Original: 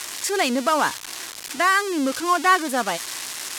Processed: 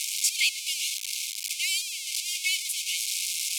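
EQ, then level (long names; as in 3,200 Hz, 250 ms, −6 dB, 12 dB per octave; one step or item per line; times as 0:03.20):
linear-phase brick-wall high-pass 2,100 Hz
+2.5 dB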